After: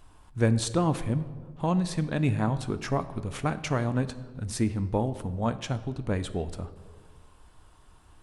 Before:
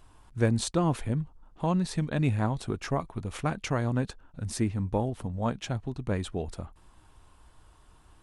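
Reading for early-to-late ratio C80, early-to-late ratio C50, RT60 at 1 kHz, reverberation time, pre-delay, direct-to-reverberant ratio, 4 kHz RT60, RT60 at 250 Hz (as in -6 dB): 16.0 dB, 14.5 dB, 1.3 s, 1.6 s, 4 ms, 12.0 dB, 0.90 s, 1.8 s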